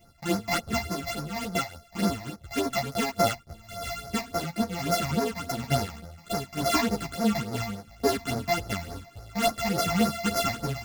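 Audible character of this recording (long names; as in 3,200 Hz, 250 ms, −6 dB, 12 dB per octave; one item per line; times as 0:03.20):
a buzz of ramps at a fixed pitch in blocks of 64 samples
phaser sweep stages 8, 3.5 Hz, lowest notch 390–3,100 Hz
sample-and-hold tremolo
a shimmering, thickened sound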